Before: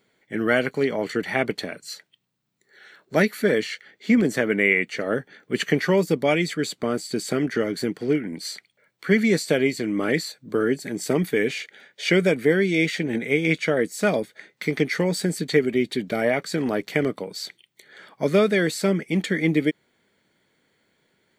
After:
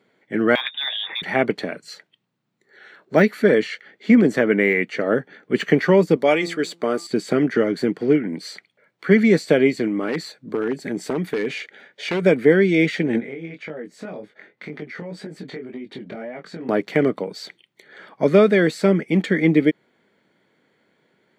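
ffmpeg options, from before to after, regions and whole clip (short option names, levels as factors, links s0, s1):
-filter_complex "[0:a]asettb=1/sr,asplit=3[s0][s1][s2];[s0]atrim=end=0.554[s3];[s1]atrim=start=0.55:end=1.22,asetpts=PTS-STARTPTS,afade=t=in:d=0.004:c=qsin,afade=t=out:st=0.666:d=0.004:c=qsin,equalizer=f=80:t=o:w=0.58:g=-15,bandreject=f=82.97:t=h:w=4,bandreject=f=165.94:t=h:w=4,bandreject=f=248.91:t=h:w=4,bandreject=f=331.88:t=h:w=4,bandreject=f=414.85:t=h:w=4,lowpass=f=3300:t=q:w=0.5098,lowpass=f=3300:t=q:w=0.6013,lowpass=f=3300:t=q:w=0.9,lowpass=f=3300:t=q:w=2.563,afreqshift=-3900[s4];[s2]atrim=start=1.216[s5];[s3][s4]acrossfade=d=0.004:c1=hsin:c2=qsin[s6];[s6][s5]acrossfade=d=0.004:c1=qsin:c2=hsin,asettb=1/sr,asplit=3[s7][s8][s9];[s7]atrim=end=6.164[s10];[s8]atrim=start=6.16:end=7.07,asetpts=PTS-STARTPTS,afade=t=in:d=0.004:c=qsin,afade=t=out:st=0.906:d=0.004:c=qsin,bass=f=250:g=-11,treble=f=4000:g=5,bandreject=f=170.1:t=h:w=4,bandreject=f=340.2:t=h:w=4,bandreject=f=510.3:t=h:w=4,bandreject=f=680.4:t=h:w=4,bandreject=f=850.5:t=h:w=4,bandreject=f=1020.6:t=h:w=4,bandreject=f=1190.7:t=h:w=4[s11];[s9]atrim=start=7.066[s12];[s10][s11]acrossfade=d=0.004:c1=hsin:c2=qsin[s13];[s13][s12]acrossfade=d=0.004:c1=qsin:c2=hsin,asettb=1/sr,asplit=3[s14][s15][s16];[s14]atrim=end=9.874[s17];[s15]atrim=start=9.87:end=12.26,asetpts=PTS-STARTPTS,afade=t=in:d=0.004:c=qsin,afade=t=out:st=2.386:d=0.004:c=qsin,aeval=exprs='0.2*(abs(mod(val(0)/0.2+3,4)-2)-1)':c=same,acompressor=threshold=0.0631:ratio=5:attack=3.2:release=140:knee=1:detection=peak[s18];[s16]atrim=start=12.256[s19];[s17][s18]acrossfade=d=0.004:c1=hsin:c2=qsin[s20];[s20][s19]acrossfade=d=0.004:c1=qsin:c2=hsin,asettb=1/sr,asplit=3[s21][s22][s23];[s21]atrim=end=13.204[s24];[s22]atrim=start=13.2:end=16.69,asetpts=PTS-STARTPTS,afade=t=in:d=0.004:c=qsin,afade=t=out:st=3.486:d=0.004:c=qsin,lowpass=f=2900:p=1,acompressor=threshold=0.0316:ratio=10:attack=3.2:release=140:knee=1:detection=peak,flanger=delay=19.5:depth=4.2:speed=1.9[s25];[s23]atrim=start=16.686[s26];[s24][s25]acrossfade=d=0.004:c1=hsin:c2=qsin[s27];[s27][s26]acrossfade=d=0.004:c1=qsin:c2=hsin,lowpass=f=1900:p=1,deesser=0.85,highpass=140,volume=1.88"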